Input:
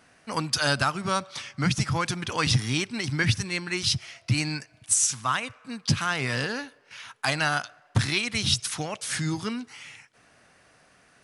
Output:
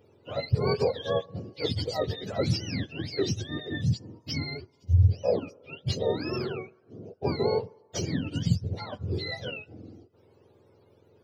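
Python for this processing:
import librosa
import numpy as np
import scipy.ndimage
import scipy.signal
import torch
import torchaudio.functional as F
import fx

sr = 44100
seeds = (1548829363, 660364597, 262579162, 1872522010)

y = fx.octave_mirror(x, sr, pivot_hz=800.0)
y = fx.graphic_eq(y, sr, hz=(125, 250, 500, 1000, 2000, 8000), db=(-8, -8, 6, -5, -3, -11))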